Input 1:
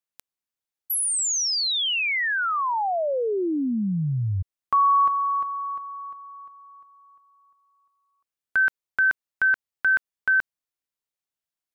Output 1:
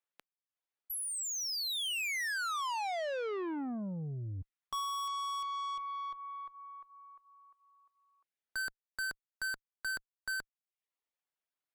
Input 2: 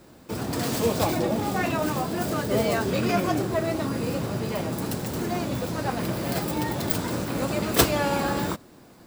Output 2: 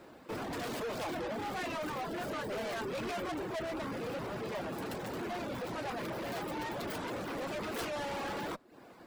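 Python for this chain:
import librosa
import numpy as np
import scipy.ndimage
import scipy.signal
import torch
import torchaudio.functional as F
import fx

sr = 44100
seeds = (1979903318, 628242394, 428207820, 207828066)

y = fx.bass_treble(x, sr, bass_db=-11, treble_db=-12)
y = fx.tube_stage(y, sr, drive_db=36.0, bias=0.2)
y = fx.dereverb_blind(y, sr, rt60_s=0.53)
y = F.gain(torch.from_numpy(y), 1.5).numpy()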